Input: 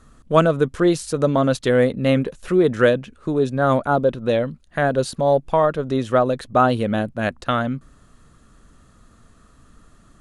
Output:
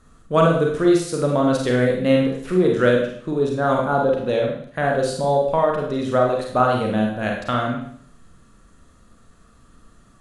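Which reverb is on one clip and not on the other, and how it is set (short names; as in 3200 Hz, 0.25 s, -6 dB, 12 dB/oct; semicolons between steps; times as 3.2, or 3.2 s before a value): Schroeder reverb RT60 0.61 s, combs from 33 ms, DRR -0.5 dB; gain -3.5 dB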